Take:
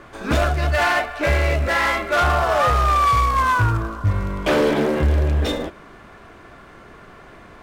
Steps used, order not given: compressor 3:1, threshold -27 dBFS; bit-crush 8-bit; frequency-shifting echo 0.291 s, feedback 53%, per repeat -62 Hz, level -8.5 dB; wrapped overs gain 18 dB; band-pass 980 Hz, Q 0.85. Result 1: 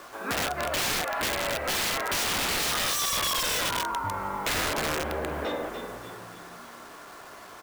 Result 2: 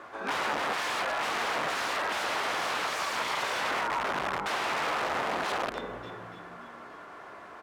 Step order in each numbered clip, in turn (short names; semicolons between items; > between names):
frequency-shifting echo > band-pass > bit-crush > wrapped overs > compressor; frequency-shifting echo > wrapped overs > bit-crush > band-pass > compressor